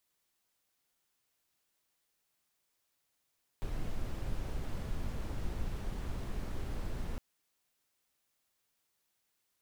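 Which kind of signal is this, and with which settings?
noise brown, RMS -35.5 dBFS 3.56 s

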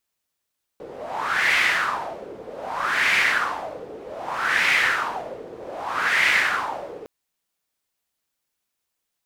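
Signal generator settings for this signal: wind-like swept noise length 6.26 s, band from 440 Hz, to 2100 Hz, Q 4.4, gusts 4, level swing 19 dB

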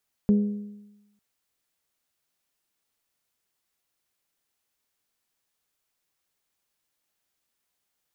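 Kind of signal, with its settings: metal hit bell, length 0.90 s, lowest mode 206 Hz, decay 1.01 s, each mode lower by 12 dB, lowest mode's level -14.5 dB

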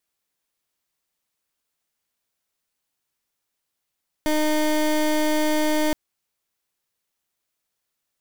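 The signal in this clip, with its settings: pulse 306 Hz, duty 23% -20.5 dBFS 1.67 s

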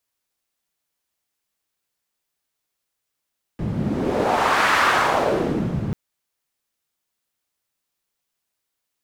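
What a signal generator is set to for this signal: wind-like swept noise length 2.34 s, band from 150 Hz, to 1400 Hz, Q 1.8, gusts 1, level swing 7 dB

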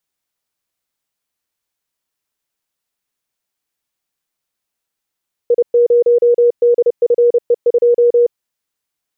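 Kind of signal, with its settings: Morse "I0DFE2" 30 wpm 478 Hz -7 dBFS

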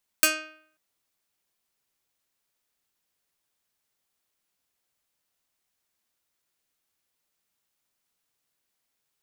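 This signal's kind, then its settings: plucked string D#4, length 0.54 s, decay 0.61 s, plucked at 0.31, medium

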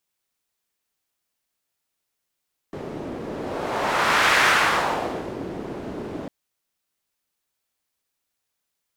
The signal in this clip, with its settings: whoosh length 3.55 s, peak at 1.68, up 1.28 s, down 1.06 s, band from 340 Hz, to 1700 Hz, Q 1.3, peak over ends 15 dB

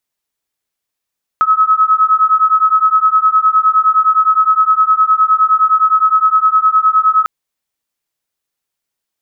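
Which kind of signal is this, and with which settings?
beating tones 1280 Hz, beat 9.7 Hz, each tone -11 dBFS 5.85 s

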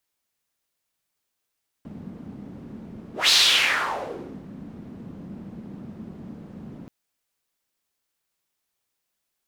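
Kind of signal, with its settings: whoosh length 5.03 s, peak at 1.45, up 0.18 s, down 1.22 s, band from 210 Hz, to 4100 Hz, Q 3.1, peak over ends 23 dB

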